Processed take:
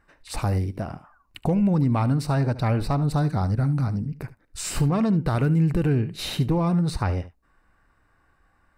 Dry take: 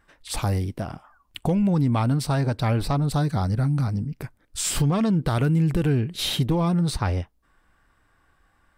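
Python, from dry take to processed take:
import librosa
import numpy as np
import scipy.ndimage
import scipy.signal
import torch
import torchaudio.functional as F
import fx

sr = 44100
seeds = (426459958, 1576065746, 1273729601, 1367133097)

y = fx.high_shelf(x, sr, hz=3900.0, db=-6.5)
y = fx.notch(y, sr, hz=3300.0, q=5.5)
y = y + 10.0 ** (-16.0 / 20.0) * np.pad(y, (int(73 * sr / 1000.0), 0))[:len(y)]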